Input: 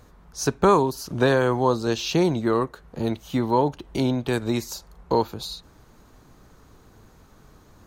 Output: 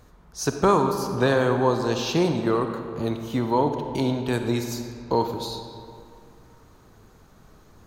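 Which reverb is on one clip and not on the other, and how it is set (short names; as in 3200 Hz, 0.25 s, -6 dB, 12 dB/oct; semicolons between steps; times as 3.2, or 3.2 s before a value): digital reverb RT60 2.4 s, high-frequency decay 0.6×, pre-delay 5 ms, DRR 5.5 dB; gain -1.5 dB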